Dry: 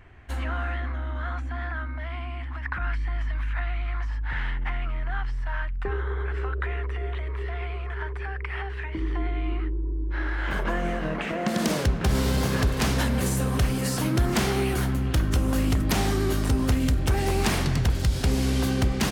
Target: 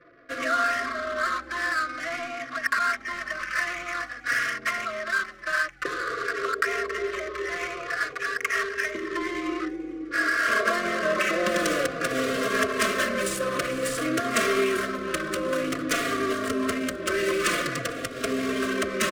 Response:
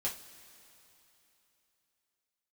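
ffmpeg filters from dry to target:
-filter_complex "[0:a]highpass=350,highshelf=frequency=6500:width_type=q:width=1.5:gain=13,asplit=2[link_01][link_02];[link_02]acompressor=threshold=-34dB:ratio=6,volume=0dB[link_03];[link_01][link_03]amix=inputs=2:normalize=0,asplit=2[link_04][link_05];[link_05]highpass=frequency=720:poles=1,volume=11dB,asoftclip=type=tanh:threshold=-1.5dB[link_06];[link_04][link_06]amix=inputs=2:normalize=0,lowpass=frequency=2400:poles=1,volume=-6dB,adynamicsmooth=sensitivity=4.5:basefreq=580,asuperstop=centerf=850:order=20:qfactor=2.4,asplit=4[link_07][link_08][link_09][link_10];[link_08]adelay=451,afreqshift=65,volume=-21dB[link_11];[link_09]adelay=902,afreqshift=130,volume=-28.5dB[link_12];[link_10]adelay=1353,afreqshift=195,volume=-36.1dB[link_13];[link_07][link_11][link_12][link_13]amix=inputs=4:normalize=0,asplit=2[link_14][link_15];[link_15]adelay=3.6,afreqshift=-0.51[link_16];[link_14][link_16]amix=inputs=2:normalize=1,volume=4.5dB"

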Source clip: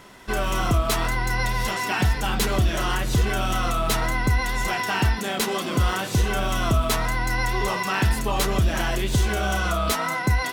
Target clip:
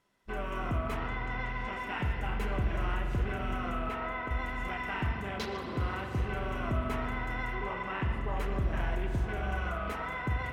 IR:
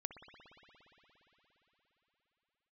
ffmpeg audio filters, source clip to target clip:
-filter_complex "[0:a]asettb=1/sr,asplit=3[link_01][link_02][link_03];[link_01]atrim=end=7.554[link_04];[link_02]atrim=start=7.55:end=8.28,asetpts=PTS-STARTPTS,afade=type=in:duration=0.004:curve=qsin,afade=type=out:start_time=0.726:duration=0.004:curve=qsin,aemphasis=mode=reproduction:type=50kf[link_05];[link_03]atrim=start=8.276[link_06];[link_04][link_05]acrossfade=duration=0.004:curve1=hsin:curve2=qsin[link_07];[link_07][link_06]acrossfade=duration=0.004:curve1=qsin:curve2=hsin,afwtdn=0.0316,asettb=1/sr,asplit=3[link_08][link_09][link_10];[link_08]atrim=end=0.974[link_11];[link_09]atrim=start=0.97:end=1.73,asetpts=PTS-STARTPTS,afade=type=in:duration=0.004:curve=qsin,afade=type=out:start_time=0.756:duration=0.004:curve=qsin,lowpass=6000[link_12];[link_10]atrim=start=1.726[link_13];[link_11][link_12]acrossfade=duration=0.004:curve1=hsin:curve2=qsin[link_14];[link_14][link_13]acrossfade=duration=0.004:curve1=qsin:curve2=hsin,asettb=1/sr,asplit=3[link_15][link_16][link_17];[link_15]atrim=end=3.894[link_18];[link_16]atrim=start=3.89:end=4.31,asetpts=PTS-STARTPTS,afade=type=in:duration=0.004:curve=qsin,afade=type=out:start_time=0.416:duration=0.004:curve=qsin,bass=frequency=250:gain=-15,treble=frequency=4000:gain=-9[link_19];[link_17]atrim=start=4.306[link_20];[link_18][link_19]acrossfade=duration=0.004:curve1=hsin:curve2=qsin[link_21];[link_21][link_20]acrossfade=duration=0.004:curve1=qsin:curve2=hsin[link_22];[1:a]atrim=start_sample=2205,asetrate=57330,aresample=44100[link_23];[link_22][link_23]afir=irnorm=-1:irlink=0,volume=-5dB"

